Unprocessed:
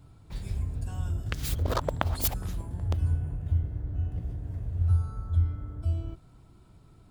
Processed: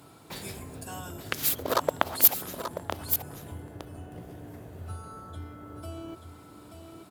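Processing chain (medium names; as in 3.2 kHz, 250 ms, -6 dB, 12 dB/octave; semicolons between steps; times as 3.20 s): in parallel at -1 dB: compression, threshold -35 dBFS, peak gain reduction 15 dB; on the sum: peaking EQ 13 kHz +11.5 dB 0.5 oct; delay 883 ms -9 dB; gain riding within 4 dB 2 s; high-pass 300 Hz 12 dB/octave; trim +2 dB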